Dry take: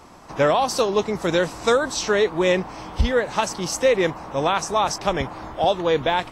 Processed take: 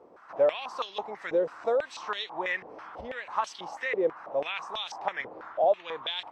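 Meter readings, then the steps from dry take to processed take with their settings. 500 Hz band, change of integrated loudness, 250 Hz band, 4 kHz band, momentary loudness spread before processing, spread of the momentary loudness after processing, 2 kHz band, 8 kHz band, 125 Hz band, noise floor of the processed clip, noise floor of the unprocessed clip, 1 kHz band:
-8.5 dB, -9.0 dB, -16.0 dB, -8.5 dB, 6 LU, 11 LU, -8.0 dB, -22.5 dB, -26.5 dB, -52 dBFS, -40 dBFS, -10.0 dB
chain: in parallel at -2 dB: compression, threshold -26 dBFS, peak gain reduction 12 dB; on the sum: step-sequenced band-pass 6.1 Hz 470–3300 Hz; trim -2.5 dB

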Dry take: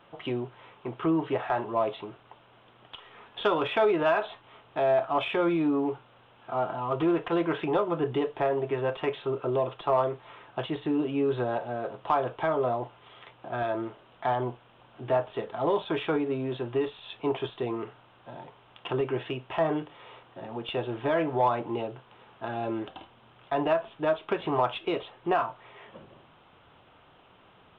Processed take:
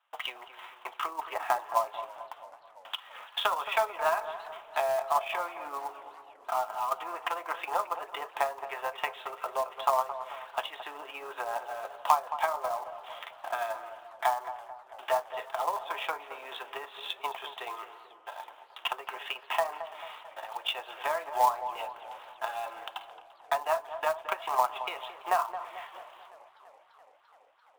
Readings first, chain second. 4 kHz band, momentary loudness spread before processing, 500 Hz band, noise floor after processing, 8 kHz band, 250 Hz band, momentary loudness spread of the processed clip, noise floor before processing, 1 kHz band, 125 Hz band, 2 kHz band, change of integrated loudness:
+2.5 dB, 16 LU, -7.5 dB, -58 dBFS, no reading, -28.0 dB, 16 LU, -58 dBFS, +1.5 dB, under -25 dB, 0.0 dB, -4.0 dB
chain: gate with hold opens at -43 dBFS; low-pass that closes with the level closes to 1.6 kHz, closed at -23 dBFS; high-pass 810 Hz 24 dB/octave; dynamic bell 1.5 kHz, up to -5 dB, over -50 dBFS, Q 4; transient shaper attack +7 dB, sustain -4 dB; in parallel at -3 dB: compression 4:1, threshold -44 dBFS, peak gain reduction 21.5 dB; on the sum: short-mantissa float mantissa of 2-bit; on a send: filtered feedback delay 220 ms, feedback 57%, low-pass 1.2 kHz, level -10 dB; on the sum: modulated delay 338 ms, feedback 75%, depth 115 cents, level -23 dB

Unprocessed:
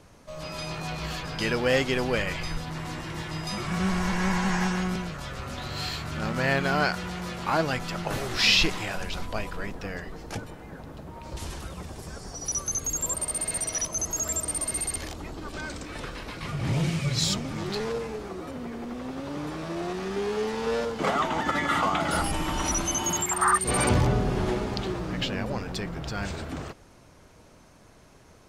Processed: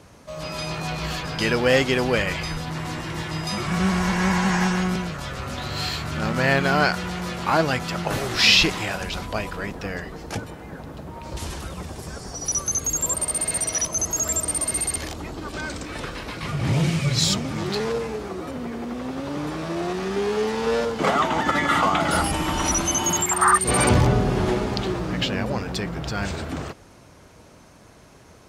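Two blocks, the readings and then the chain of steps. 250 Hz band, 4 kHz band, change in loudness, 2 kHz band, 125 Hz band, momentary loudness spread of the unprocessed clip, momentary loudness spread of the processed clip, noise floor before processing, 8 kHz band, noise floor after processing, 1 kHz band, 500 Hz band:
+5.0 dB, +5.0 dB, +5.0 dB, +5.0 dB, +5.0 dB, 14 LU, 14 LU, -53 dBFS, +5.0 dB, -49 dBFS, +5.0 dB, +5.0 dB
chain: high-pass 44 Hz; trim +5 dB

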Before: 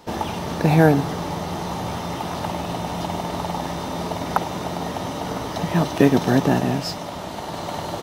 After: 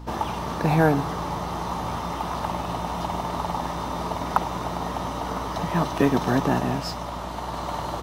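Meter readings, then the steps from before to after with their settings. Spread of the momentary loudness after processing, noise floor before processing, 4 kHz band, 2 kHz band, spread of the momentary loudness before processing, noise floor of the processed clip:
9 LU, -32 dBFS, -4.5 dB, -3.0 dB, 12 LU, -32 dBFS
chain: peaking EQ 1.1 kHz +8.5 dB 0.73 oct; hum 60 Hz, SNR 13 dB; in parallel at -9.5 dB: hard clipper -13 dBFS, distortion -9 dB; on the sum: trim -7 dB

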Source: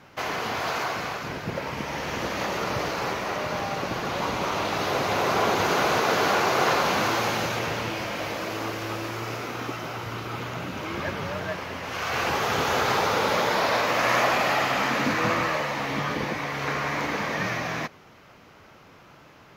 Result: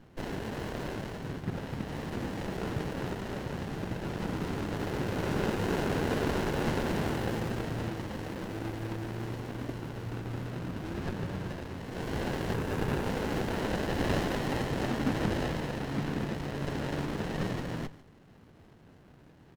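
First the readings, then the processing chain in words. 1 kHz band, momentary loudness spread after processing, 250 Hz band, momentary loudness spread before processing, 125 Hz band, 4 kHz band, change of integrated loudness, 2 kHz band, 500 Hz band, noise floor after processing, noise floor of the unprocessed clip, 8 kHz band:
-13.5 dB, 8 LU, -0.5 dB, 10 LU, +1.0 dB, -12.5 dB, -8.0 dB, -13.0 dB, -7.5 dB, -56 dBFS, -51 dBFS, -12.5 dB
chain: static phaser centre 1.6 kHz, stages 4; spectral selection erased 12.54–13.03 s, 1.8–6.3 kHz; on a send: delay 145 ms -17.5 dB; on the sum: sliding maximum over 33 samples

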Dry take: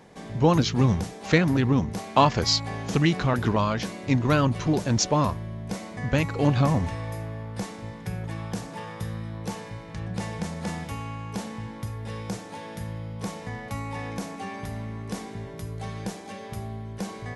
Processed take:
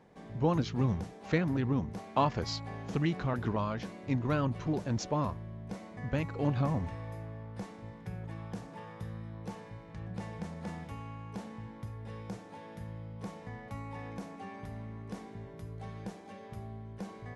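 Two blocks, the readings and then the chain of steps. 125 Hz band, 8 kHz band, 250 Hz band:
-8.5 dB, -17.0 dB, -8.5 dB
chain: treble shelf 3.2 kHz -10.5 dB; trim -8.5 dB

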